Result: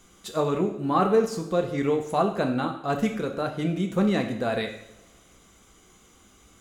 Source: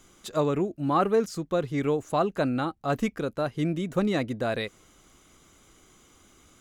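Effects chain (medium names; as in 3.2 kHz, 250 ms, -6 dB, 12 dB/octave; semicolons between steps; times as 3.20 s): two-slope reverb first 0.65 s, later 1.8 s, DRR 3.5 dB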